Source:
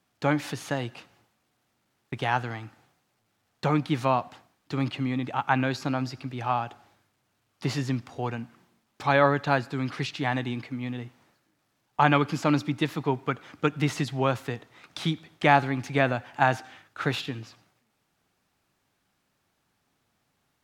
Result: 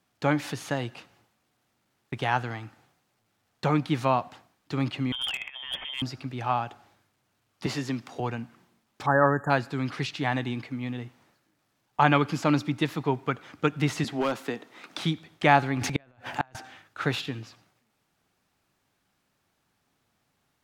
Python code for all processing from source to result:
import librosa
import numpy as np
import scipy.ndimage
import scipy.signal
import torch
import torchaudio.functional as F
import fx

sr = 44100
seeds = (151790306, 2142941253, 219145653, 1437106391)

y = fx.chain(x, sr, fx.freq_invert(carrier_hz=3400),
    fx.over_compress(threshold_db=-32.0, ratio=-0.5),
    fx.clip_hard(threshold_db=-25.0), at=(5.12, 6.02))
y = fx.chain(y, sr, fx.highpass(hz=180.0, slope=12),
    fx.band_squash(depth_pct=40), at=(7.66, 8.2))
y = fx.chain(y, sr, fx.brickwall_bandstop(low_hz=1900.0, high_hz=6700.0),
    fx.dynamic_eq(hz=640.0, q=6.3, threshold_db=-36.0, ratio=4.0, max_db=-4), at=(9.06, 9.5))
y = fx.chain(y, sr, fx.low_shelf_res(hz=160.0, db=-12.5, q=1.5),
    fx.clip_hard(threshold_db=-20.0),
    fx.band_squash(depth_pct=40), at=(14.04, 15.01))
y = fx.chain(y, sr, fx.transient(attack_db=6, sustain_db=12),
    fx.gate_flip(shuts_db=-11.0, range_db=-38), at=(15.76, 16.55))